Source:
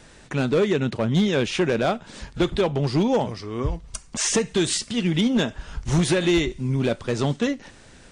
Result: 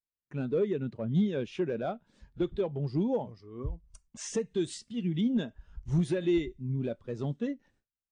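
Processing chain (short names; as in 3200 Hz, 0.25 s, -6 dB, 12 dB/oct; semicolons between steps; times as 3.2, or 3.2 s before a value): gate with hold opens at -37 dBFS; spectral expander 1.5:1; gain -5 dB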